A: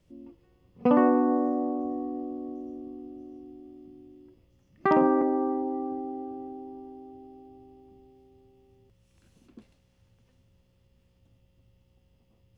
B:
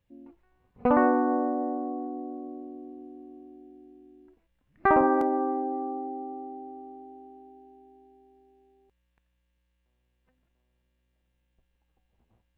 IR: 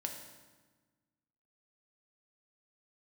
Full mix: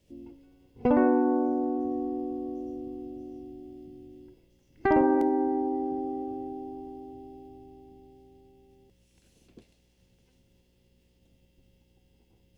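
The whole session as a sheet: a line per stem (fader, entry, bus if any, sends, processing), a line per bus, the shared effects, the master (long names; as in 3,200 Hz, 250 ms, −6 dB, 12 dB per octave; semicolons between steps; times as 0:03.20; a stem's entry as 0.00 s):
−1.5 dB, 0.00 s, no send, ceiling on every frequency bin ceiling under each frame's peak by 13 dB; downward compressor, threshold −28 dBFS, peak gain reduction 11.5 dB
−1.5 dB, 0.00 s, polarity flipped, send −5.5 dB, no processing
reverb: on, RT60 1.3 s, pre-delay 3 ms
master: parametric band 1,200 Hz −12 dB 1.2 octaves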